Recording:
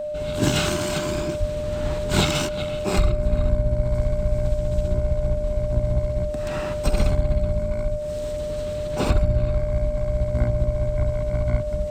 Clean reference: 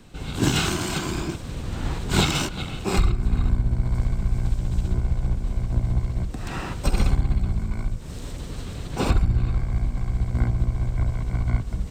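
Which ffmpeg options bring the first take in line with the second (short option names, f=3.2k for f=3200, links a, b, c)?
-filter_complex "[0:a]bandreject=f=600:w=30,asplit=3[a][b][c];[a]afade=t=out:st=1.39:d=0.02[d];[b]highpass=f=140:w=0.5412,highpass=f=140:w=1.3066,afade=t=in:st=1.39:d=0.02,afade=t=out:st=1.51:d=0.02[e];[c]afade=t=in:st=1.51:d=0.02[f];[d][e][f]amix=inputs=3:normalize=0,asplit=3[g][h][i];[g]afade=t=out:st=7.09:d=0.02[j];[h]highpass=f=140:w=0.5412,highpass=f=140:w=1.3066,afade=t=in:st=7.09:d=0.02,afade=t=out:st=7.21:d=0.02[k];[i]afade=t=in:st=7.21:d=0.02[l];[j][k][l]amix=inputs=3:normalize=0"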